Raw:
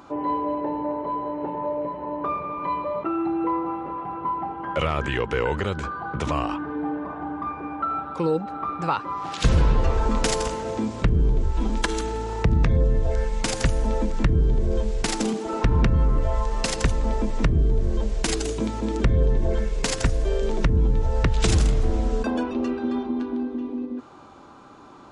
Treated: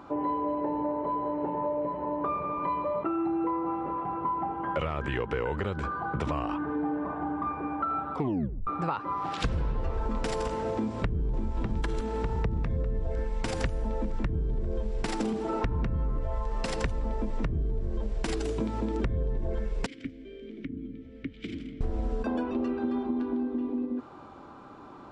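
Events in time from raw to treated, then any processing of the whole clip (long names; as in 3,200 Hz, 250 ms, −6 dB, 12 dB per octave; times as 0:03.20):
0:08.15: tape stop 0.52 s
0:10.73–0:11.41: delay throw 600 ms, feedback 65%, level −3.5 dB
0:19.86–0:21.81: formant filter i
whole clip: high-shelf EQ 3,400 Hz −11 dB; notch filter 6,500 Hz, Q 14; downward compressor, threshold −26 dBFS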